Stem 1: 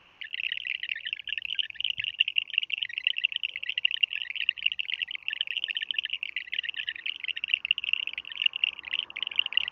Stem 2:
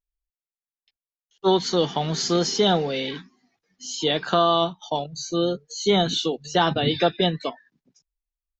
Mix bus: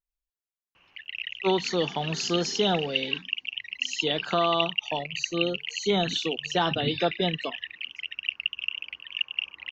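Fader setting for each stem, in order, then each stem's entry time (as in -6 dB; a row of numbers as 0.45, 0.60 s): -3.5, -5.0 dB; 0.75, 0.00 s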